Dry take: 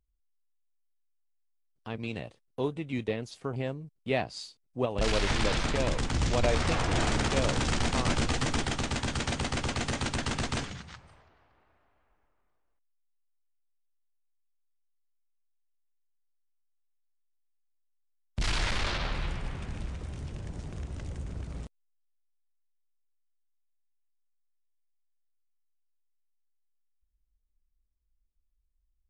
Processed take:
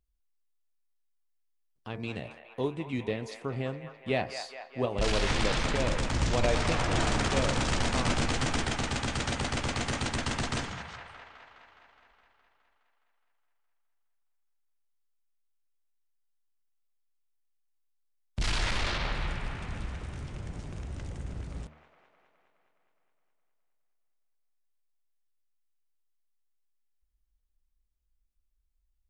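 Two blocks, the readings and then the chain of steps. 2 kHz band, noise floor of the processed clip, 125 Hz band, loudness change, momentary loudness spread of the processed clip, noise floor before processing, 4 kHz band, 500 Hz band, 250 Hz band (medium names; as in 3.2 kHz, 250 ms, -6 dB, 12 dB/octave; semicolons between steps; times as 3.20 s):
+1.0 dB, -74 dBFS, -0.5 dB, 0.0 dB, 13 LU, -74 dBFS, 0.0 dB, 0.0 dB, -0.5 dB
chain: de-hum 75.5 Hz, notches 33; on a send: feedback echo behind a band-pass 208 ms, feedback 68%, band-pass 1.3 kHz, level -7.5 dB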